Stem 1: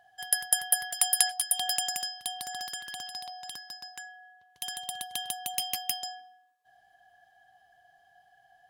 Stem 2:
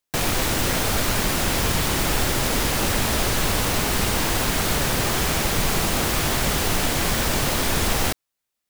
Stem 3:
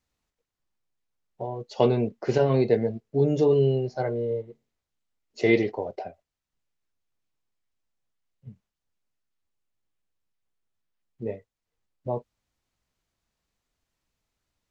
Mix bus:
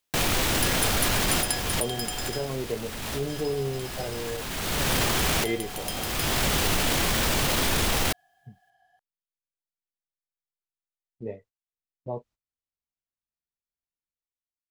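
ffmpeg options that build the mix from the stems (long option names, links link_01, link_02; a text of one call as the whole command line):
ffmpeg -i stem1.wav -i stem2.wav -i stem3.wav -filter_complex "[0:a]acontrast=61,adelay=300,volume=-10.5dB,asplit=3[link_01][link_02][link_03];[link_01]atrim=end=2.54,asetpts=PTS-STARTPTS,afade=type=out:start_time=2.536:duration=0.004:curve=hsin[link_04];[link_02]atrim=start=2.54:end=3.27,asetpts=PTS-STARTPTS,volume=0[link_05];[link_03]atrim=start=3.27,asetpts=PTS-STARTPTS,afade=type=in:duration=0.004:curve=hsin[link_06];[link_04][link_05][link_06]concat=n=3:v=0:a=1[link_07];[1:a]equalizer=frequency=3100:width=1.5:gain=3,alimiter=limit=-16.5dB:level=0:latency=1:release=16,volume=1.5dB[link_08];[2:a]agate=range=-19dB:threshold=-50dB:ratio=16:detection=peak,dynaudnorm=framelen=320:gausssize=5:maxgain=13dB,volume=-16dB,asplit=2[link_09][link_10];[link_10]apad=whole_len=383664[link_11];[link_08][link_11]sidechaincompress=threshold=-46dB:ratio=4:attack=49:release=515[link_12];[link_07][link_12][link_09]amix=inputs=3:normalize=0" out.wav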